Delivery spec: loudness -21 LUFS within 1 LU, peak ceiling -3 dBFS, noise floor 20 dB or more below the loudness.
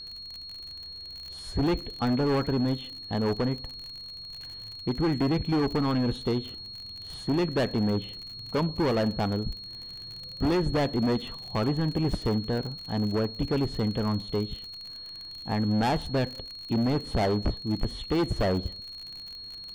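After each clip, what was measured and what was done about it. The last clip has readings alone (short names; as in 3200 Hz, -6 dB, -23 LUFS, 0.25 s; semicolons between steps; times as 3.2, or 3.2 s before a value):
ticks 48/s; steady tone 4300 Hz; tone level -39 dBFS; loudness -29.5 LUFS; peak -18.0 dBFS; loudness target -21.0 LUFS
-> de-click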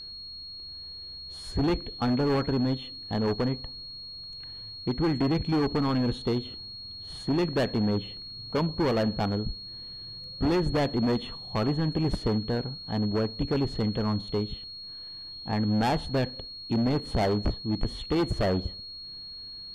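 ticks 0.15/s; steady tone 4300 Hz; tone level -39 dBFS
-> notch 4300 Hz, Q 30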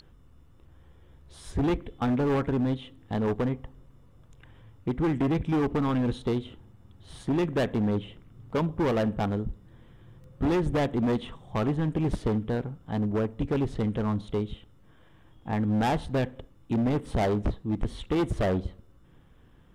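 steady tone none; loudness -28.5 LUFS; peak -15.5 dBFS; loudness target -21.0 LUFS
-> gain +7.5 dB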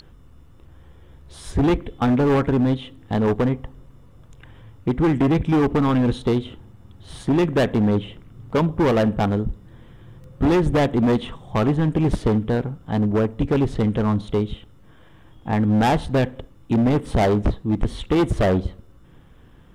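loudness -21.0 LUFS; peak -8.0 dBFS; noise floor -49 dBFS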